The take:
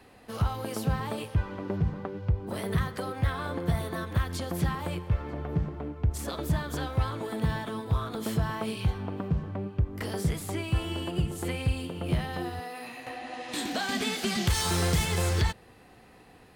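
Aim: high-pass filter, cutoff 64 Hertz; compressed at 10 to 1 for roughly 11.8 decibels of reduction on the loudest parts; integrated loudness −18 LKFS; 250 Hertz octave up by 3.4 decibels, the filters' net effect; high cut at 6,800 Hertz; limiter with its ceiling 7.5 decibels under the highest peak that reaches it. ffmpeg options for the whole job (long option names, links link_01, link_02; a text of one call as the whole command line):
ffmpeg -i in.wav -af "highpass=64,lowpass=6800,equalizer=frequency=250:width_type=o:gain=5,acompressor=threshold=-33dB:ratio=10,volume=21.5dB,alimiter=limit=-8dB:level=0:latency=1" out.wav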